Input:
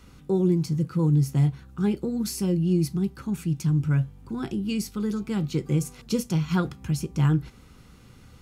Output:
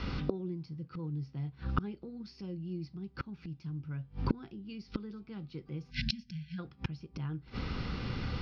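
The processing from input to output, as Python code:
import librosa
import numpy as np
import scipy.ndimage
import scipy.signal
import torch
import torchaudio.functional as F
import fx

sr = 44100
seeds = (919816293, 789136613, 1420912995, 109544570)

y = fx.spec_erase(x, sr, start_s=5.9, length_s=0.69, low_hz=250.0, high_hz=1500.0)
y = scipy.signal.sosfilt(scipy.signal.ellip(4, 1.0, 40, 5100.0, 'lowpass', fs=sr, output='sos'), y)
y = fx.gate_flip(y, sr, shuts_db=-31.0, range_db=-31)
y = y * librosa.db_to_amplitude(15.0)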